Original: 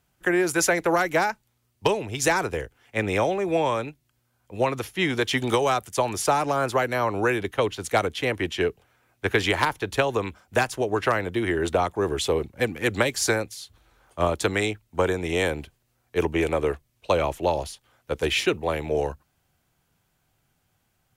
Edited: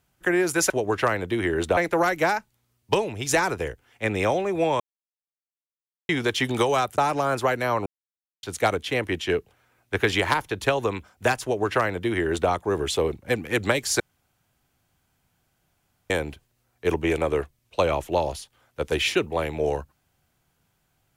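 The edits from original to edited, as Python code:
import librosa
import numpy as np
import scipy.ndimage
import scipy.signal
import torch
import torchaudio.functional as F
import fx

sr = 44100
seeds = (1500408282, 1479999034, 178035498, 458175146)

y = fx.edit(x, sr, fx.silence(start_s=3.73, length_s=1.29),
    fx.cut(start_s=5.91, length_s=0.38),
    fx.silence(start_s=7.17, length_s=0.57),
    fx.duplicate(start_s=10.74, length_s=1.07, to_s=0.7),
    fx.room_tone_fill(start_s=13.31, length_s=2.1), tone=tone)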